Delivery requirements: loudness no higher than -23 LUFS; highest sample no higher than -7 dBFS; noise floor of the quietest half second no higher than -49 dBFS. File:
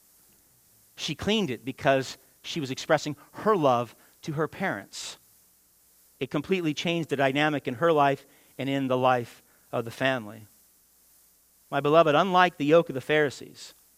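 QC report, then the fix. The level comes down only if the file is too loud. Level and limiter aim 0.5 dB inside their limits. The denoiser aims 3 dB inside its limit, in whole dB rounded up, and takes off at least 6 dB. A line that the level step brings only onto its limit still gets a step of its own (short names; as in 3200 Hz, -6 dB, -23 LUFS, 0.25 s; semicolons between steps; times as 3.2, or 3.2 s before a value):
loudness -26.0 LUFS: OK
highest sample -5.5 dBFS: fail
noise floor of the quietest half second -62 dBFS: OK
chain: limiter -7.5 dBFS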